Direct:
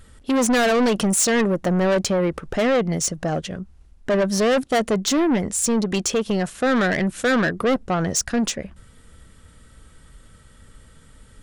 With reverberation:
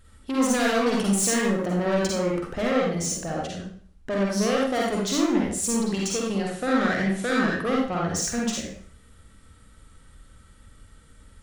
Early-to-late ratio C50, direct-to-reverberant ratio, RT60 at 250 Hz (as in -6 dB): -0.5 dB, -3.5 dB, 0.50 s